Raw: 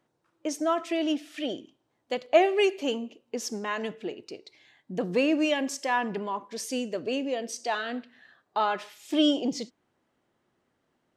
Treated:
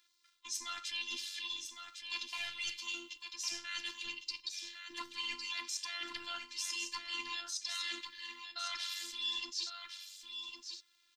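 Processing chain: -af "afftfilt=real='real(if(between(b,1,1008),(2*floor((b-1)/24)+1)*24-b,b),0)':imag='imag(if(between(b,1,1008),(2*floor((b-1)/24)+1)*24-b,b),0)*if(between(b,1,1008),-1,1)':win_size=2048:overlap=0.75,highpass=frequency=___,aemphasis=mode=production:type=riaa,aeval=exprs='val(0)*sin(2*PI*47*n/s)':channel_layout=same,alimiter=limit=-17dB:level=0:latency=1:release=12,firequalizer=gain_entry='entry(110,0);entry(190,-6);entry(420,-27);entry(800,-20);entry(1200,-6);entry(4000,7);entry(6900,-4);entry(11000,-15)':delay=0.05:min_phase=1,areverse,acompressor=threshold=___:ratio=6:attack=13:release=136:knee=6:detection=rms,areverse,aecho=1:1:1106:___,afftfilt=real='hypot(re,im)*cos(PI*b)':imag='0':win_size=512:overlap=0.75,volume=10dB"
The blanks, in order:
230, -44dB, 0.422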